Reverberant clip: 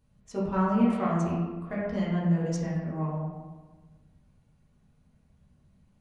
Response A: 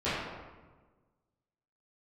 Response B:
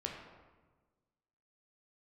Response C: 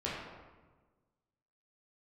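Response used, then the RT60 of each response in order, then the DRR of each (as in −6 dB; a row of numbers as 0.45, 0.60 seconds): C; 1.3, 1.3, 1.3 seconds; −15.0, −0.5, −7.5 decibels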